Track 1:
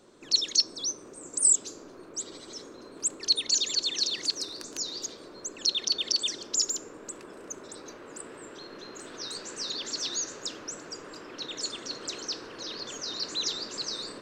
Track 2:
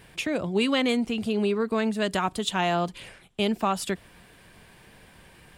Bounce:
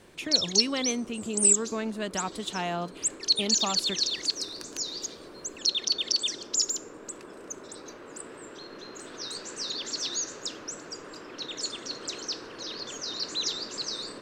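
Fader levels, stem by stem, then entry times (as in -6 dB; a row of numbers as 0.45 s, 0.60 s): +0.5 dB, -6.5 dB; 0.00 s, 0.00 s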